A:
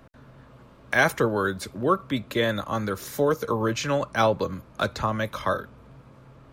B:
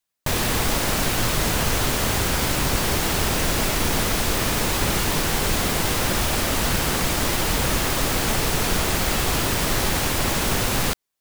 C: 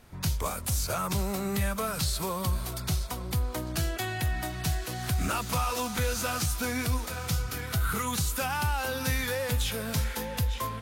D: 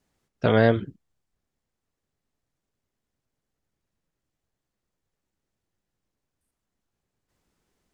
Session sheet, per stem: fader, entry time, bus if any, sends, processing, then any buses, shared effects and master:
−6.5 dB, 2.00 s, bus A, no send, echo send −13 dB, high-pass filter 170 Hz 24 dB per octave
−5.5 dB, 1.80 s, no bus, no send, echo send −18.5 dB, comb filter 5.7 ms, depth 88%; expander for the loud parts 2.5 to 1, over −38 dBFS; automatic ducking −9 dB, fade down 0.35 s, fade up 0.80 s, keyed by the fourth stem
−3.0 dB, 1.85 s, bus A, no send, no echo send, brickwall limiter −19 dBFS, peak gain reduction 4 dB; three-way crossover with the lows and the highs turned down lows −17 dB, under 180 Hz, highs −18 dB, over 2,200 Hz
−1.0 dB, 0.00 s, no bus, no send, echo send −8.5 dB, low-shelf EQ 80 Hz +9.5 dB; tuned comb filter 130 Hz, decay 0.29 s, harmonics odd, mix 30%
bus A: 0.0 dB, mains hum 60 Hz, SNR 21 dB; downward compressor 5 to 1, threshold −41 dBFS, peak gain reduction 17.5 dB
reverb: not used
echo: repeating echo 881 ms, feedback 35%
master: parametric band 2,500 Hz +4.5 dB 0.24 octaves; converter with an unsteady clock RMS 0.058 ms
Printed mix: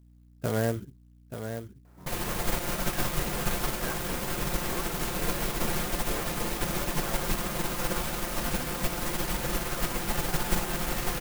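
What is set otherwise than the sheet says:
stem D −1.0 dB → −7.0 dB
master: missing parametric band 2,500 Hz +4.5 dB 0.24 octaves

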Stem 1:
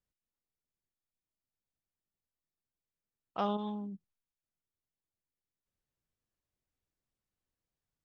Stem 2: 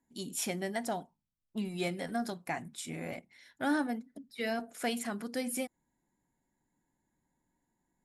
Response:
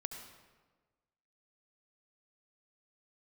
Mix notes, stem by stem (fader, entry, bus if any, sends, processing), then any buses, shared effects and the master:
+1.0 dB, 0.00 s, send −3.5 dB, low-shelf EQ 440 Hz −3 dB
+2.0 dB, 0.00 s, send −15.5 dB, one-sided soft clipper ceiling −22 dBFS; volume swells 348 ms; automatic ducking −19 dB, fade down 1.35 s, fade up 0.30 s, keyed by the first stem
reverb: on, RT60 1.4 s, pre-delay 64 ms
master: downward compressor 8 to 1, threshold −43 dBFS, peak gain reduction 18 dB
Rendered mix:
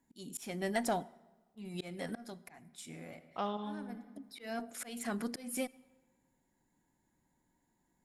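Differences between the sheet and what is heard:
stem 1 +1.0 dB → −6.0 dB
master: missing downward compressor 8 to 1, threshold −43 dBFS, peak gain reduction 18 dB

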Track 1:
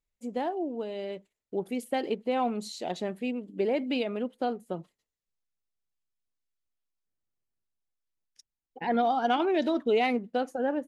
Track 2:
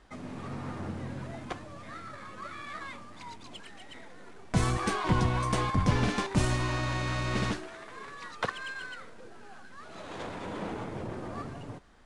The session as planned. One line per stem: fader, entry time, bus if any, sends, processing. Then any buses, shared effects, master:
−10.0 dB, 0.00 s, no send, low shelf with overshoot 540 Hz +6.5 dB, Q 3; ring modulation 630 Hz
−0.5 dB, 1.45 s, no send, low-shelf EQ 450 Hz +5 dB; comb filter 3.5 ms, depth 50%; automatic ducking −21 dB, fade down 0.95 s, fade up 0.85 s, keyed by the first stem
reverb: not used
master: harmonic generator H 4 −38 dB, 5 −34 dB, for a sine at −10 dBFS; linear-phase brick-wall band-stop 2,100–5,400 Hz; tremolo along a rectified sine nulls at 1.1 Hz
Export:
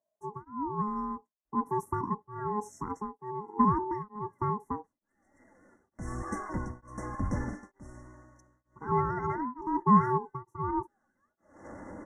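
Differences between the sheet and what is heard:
stem 1 −10.0 dB → −4.0 dB
stem 2 −0.5 dB → −9.5 dB

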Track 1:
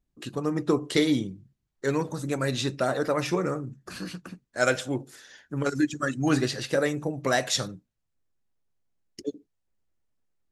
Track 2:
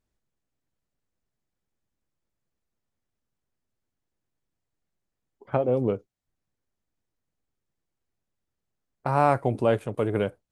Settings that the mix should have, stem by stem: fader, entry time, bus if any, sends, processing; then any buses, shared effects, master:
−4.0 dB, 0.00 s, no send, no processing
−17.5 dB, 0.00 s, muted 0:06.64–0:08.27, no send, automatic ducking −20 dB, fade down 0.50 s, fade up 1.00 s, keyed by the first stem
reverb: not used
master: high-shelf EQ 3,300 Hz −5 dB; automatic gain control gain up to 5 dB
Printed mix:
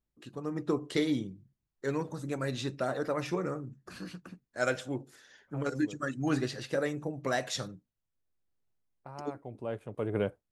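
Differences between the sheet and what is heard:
stem 1 −4.0 dB → −11.0 dB
stem 2 −17.5 dB → −7.0 dB

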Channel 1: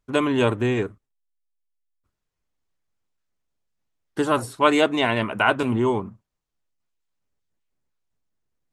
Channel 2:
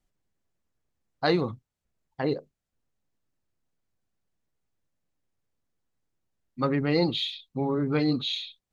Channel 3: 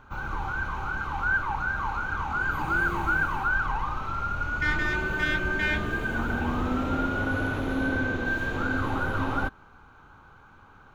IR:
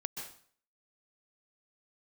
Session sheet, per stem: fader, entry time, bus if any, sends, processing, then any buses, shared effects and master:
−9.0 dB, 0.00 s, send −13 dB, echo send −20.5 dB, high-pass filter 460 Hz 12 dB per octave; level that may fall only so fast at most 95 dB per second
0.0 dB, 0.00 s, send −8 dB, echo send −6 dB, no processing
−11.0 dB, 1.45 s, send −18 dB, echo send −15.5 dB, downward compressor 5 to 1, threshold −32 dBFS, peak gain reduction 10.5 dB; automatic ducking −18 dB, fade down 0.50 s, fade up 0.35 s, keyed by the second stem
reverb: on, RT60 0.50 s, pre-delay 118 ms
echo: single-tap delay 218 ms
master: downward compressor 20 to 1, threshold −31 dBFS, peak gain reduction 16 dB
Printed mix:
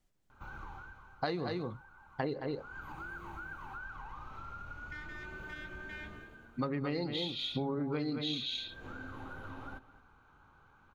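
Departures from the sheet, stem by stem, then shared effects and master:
stem 1: muted
stem 3: entry 1.45 s → 0.30 s
reverb return −6.5 dB

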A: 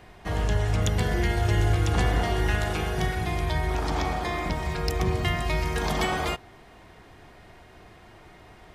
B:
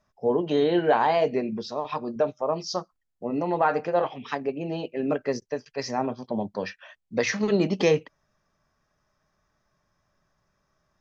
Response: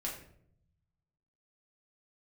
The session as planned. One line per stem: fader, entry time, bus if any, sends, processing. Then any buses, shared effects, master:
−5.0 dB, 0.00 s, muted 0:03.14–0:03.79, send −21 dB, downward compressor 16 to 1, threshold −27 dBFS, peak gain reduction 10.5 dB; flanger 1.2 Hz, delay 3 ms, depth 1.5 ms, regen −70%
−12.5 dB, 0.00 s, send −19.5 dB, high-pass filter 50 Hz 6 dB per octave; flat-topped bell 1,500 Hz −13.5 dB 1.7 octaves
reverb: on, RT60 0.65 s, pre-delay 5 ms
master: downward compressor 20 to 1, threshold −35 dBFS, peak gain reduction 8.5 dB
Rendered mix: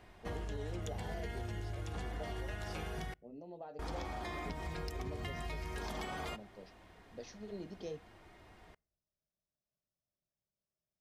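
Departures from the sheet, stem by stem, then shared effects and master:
stem B −12.5 dB → −23.0 dB
reverb return −8.5 dB

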